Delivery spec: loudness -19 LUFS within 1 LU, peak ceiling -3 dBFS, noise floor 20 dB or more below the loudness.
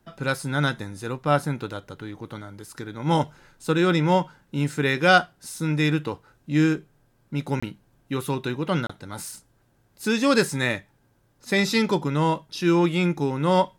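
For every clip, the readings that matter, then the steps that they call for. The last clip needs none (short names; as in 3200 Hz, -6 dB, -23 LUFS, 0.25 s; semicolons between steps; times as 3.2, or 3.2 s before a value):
dropouts 2; longest dropout 25 ms; loudness -24.0 LUFS; peak -5.0 dBFS; loudness target -19.0 LUFS
-> interpolate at 7.6/8.87, 25 ms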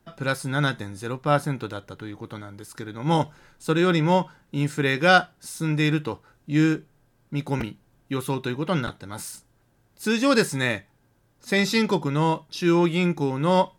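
dropouts 0; loudness -24.0 LUFS; peak -5.0 dBFS; loudness target -19.0 LUFS
-> gain +5 dB; limiter -3 dBFS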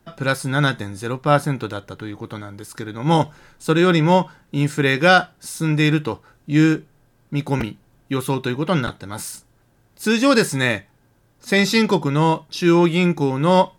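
loudness -19.0 LUFS; peak -3.0 dBFS; noise floor -59 dBFS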